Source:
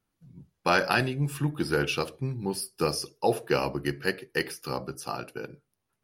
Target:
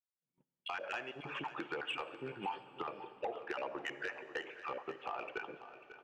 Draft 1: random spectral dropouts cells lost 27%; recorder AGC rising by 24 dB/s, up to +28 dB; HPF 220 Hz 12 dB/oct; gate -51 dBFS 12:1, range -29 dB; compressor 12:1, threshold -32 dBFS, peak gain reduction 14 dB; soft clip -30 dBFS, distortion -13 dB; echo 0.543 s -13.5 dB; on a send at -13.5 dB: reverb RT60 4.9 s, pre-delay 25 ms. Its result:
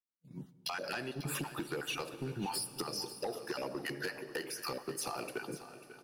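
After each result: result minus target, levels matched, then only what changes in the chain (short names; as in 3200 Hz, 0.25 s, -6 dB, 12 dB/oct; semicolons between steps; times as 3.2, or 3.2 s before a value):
250 Hz band +4.0 dB; 4000 Hz band +3.0 dB
change: HPF 550 Hz 12 dB/oct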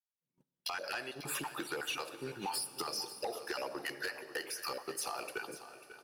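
4000 Hz band +4.0 dB
add after compressor: rippled Chebyshev low-pass 3300 Hz, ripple 3 dB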